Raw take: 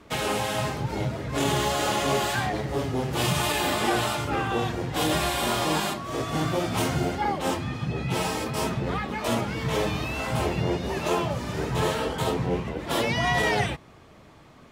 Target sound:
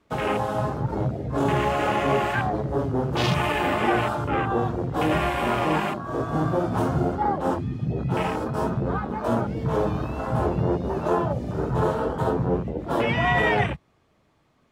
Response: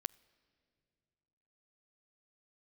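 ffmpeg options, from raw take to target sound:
-af "afwtdn=0.0316,volume=3dB"

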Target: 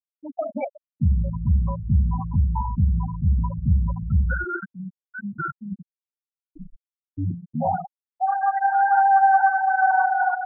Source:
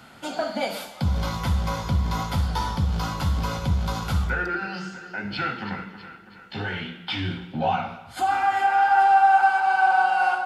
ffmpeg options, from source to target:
ffmpeg -i in.wav -filter_complex "[0:a]lowshelf=frequency=280:gain=4.5,asettb=1/sr,asplit=3[link_01][link_02][link_03];[link_01]atrim=end=5.874[link_04];[link_02]atrim=start=5.87:end=7.18,asetpts=PTS-STARTPTS,afade=type=in:duration=0.004:curve=qsin,afade=type=out:start_time=1.306:duration=0.004:curve=qsin,aeval=exprs='val(0)*sin(2*PI*85*n/s)':channel_layout=same[link_05];[link_03]atrim=start=7.176[link_06];[link_04][link_05]acrossfade=duration=0.004:curve1=hsin:curve2=qsin[link_07];[link_07][link_06]acrossfade=duration=0.004:curve1=qsin:curve2=hsin,afftfilt=real='re*gte(hypot(re,im),0.224)':imag='im*gte(hypot(re,im),0.224)':win_size=1024:overlap=0.75" out.wav

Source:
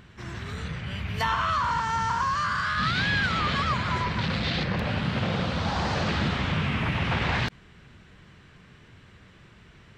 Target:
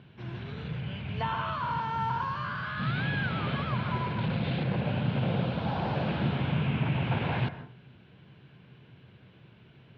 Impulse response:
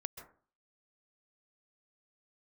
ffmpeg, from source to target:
-filter_complex "[0:a]acrossover=split=2700[link_01][link_02];[link_02]acompressor=threshold=-42dB:ratio=4:attack=1:release=60[link_03];[link_01][link_03]amix=inputs=2:normalize=0,highpass=120,equalizer=frequency=130:width_type=q:width=4:gain=8,equalizer=frequency=1200:width_type=q:width=4:gain=-9,equalizer=frequency=1900:width_type=q:width=4:gain=-10,lowpass=frequency=3500:width=0.5412,lowpass=frequency=3500:width=1.3066,asplit=2[link_04][link_05];[1:a]atrim=start_sample=2205[link_06];[link_05][link_06]afir=irnorm=-1:irlink=0,volume=4dB[link_07];[link_04][link_07]amix=inputs=2:normalize=0,volume=-8.5dB"

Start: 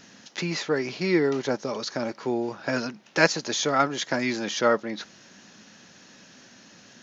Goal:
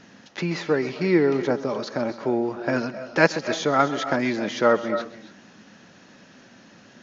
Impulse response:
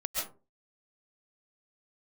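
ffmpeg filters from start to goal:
-filter_complex "[0:a]lowpass=frequency=1900:poles=1,asplit=2[link_01][link_02];[1:a]atrim=start_sample=2205,adelay=130[link_03];[link_02][link_03]afir=irnorm=-1:irlink=0,volume=-16dB[link_04];[link_01][link_04]amix=inputs=2:normalize=0,volume=3.5dB"

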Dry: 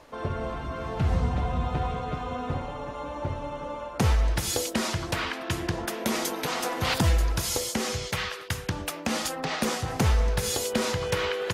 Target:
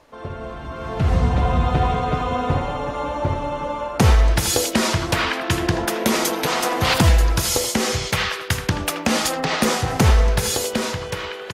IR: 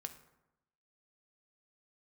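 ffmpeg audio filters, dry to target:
-filter_complex "[0:a]asplit=2[link_01][link_02];[link_02]adelay=80,highpass=300,lowpass=3400,asoftclip=type=hard:threshold=-21.5dB,volume=-8dB[link_03];[link_01][link_03]amix=inputs=2:normalize=0,dynaudnorm=framelen=120:gausssize=17:maxgain=12dB,volume=-1.5dB"

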